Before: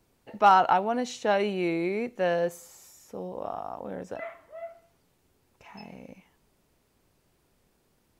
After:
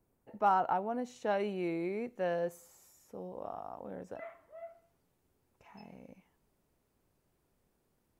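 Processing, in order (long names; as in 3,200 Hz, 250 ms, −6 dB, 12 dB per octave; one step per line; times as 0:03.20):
parametric band 3,900 Hz −13 dB 2.2 octaves, from 0:01.16 −5.5 dB
level −7 dB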